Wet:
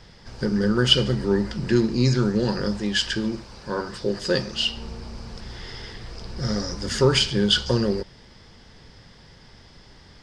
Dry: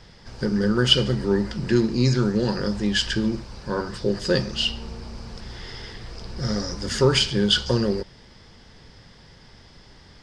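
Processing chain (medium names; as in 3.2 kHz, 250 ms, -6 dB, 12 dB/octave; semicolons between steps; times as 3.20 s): 2.77–4.77 s: bass shelf 180 Hz -7 dB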